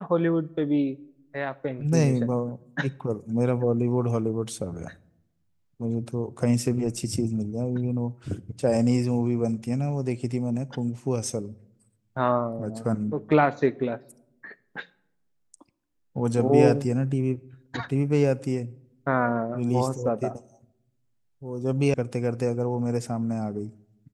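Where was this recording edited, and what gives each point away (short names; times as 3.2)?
21.94 sound cut off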